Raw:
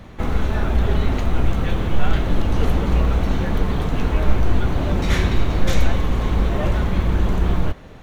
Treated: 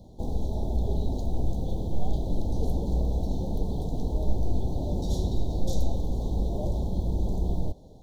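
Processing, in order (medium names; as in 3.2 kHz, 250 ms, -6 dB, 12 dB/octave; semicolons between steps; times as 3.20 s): inverse Chebyshev band-stop 1.2–2.7 kHz, stop band 40 dB; trim -8.5 dB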